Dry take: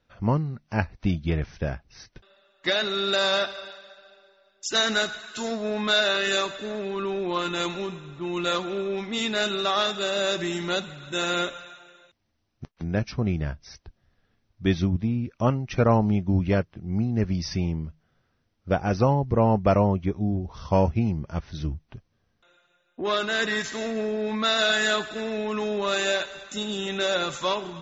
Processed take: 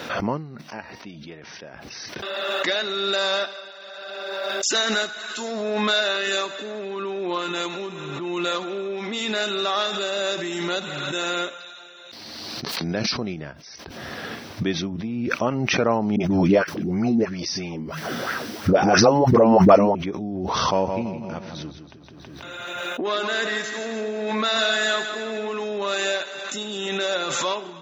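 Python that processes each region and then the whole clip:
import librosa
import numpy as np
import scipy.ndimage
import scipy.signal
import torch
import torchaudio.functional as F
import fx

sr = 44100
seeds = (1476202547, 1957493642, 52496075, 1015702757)

y = fx.chain(x, sr, fx.highpass(hz=160.0, slope=6),
    fx.comb_fb(f0_hz=940.0, decay_s=0.15, harmonics='all', damping=0.0, mix_pct=70), at=(0.61, 1.74))
y = fx.chain(y, sr, fx.peak_eq(hz=4400.0, db=13.0, octaves=0.54),
    fx.sustainer(db_per_s=23.0), at=(11.6, 13.34))
y = fx.chain(y, sr, fx.high_shelf(hz=5400.0, db=11.0),
    fx.dispersion(late='highs', ms=42.0, hz=500.0),
    fx.bell_lfo(hz=3.0, low_hz=220.0, high_hz=1800.0, db=12), at=(16.16, 19.95))
y = fx.chain(y, sr, fx.notch(hz=5400.0, q=22.0),
    fx.echo_feedback(ms=162, feedback_pct=47, wet_db=-8.5), at=(20.5, 25.6))
y = scipy.signal.sosfilt(scipy.signal.butter(2, 240.0, 'highpass', fs=sr, output='sos'), y)
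y = fx.pre_swell(y, sr, db_per_s=22.0)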